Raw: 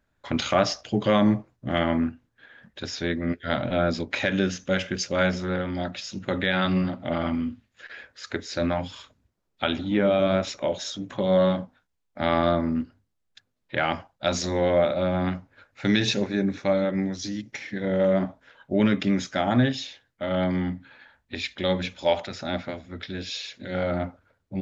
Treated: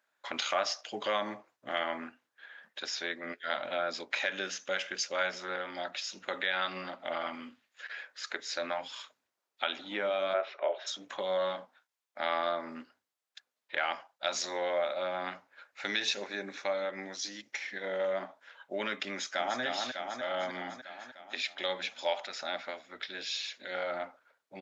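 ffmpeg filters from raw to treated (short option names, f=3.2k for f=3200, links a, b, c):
-filter_complex "[0:a]asplit=3[a][b][c];[a]afade=t=out:st=10.33:d=0.02[d];[b]highpass=f=280:w=0.5412,highpass=f=280:w=1.3066,equalizer=f=280:t=q:w=4:g=-5,equalizer=f=400:t=q:w=4:g=9,equalizer=f=660:t=q:w=4:g=8,equalizer=f=1.3k:t=q:w=4:g=4,lowpass=f=2.9k:w=0.5412,lowpass=f=2.9k:w=1.3066,afade=t=in:st=10.33:d=0.02,afade=t=out:st=10.86:d=0.02[e];[c]afade=t=in:st=10.86:d=0.02[f];[d][e][f]amix=inputs=3:normalize=0,asplit=2[g][h];[h]afade=t=in:st=19.09:d=0.01,afade=t=out:st=19.61:d=0.01,aecho=0:1:300|600|900|1200|1500|1800|2100|2400|2700|3000:0.562341|0.365522|0.237589|0.154433|0.100381|0.0652479|0.0424112|0.0275673|0.0179187|0.0116472[i];[g][i]amix=inputs=2:normalize=0,highpass=710,acompressor=threshold=-36dB:ratio=1.5"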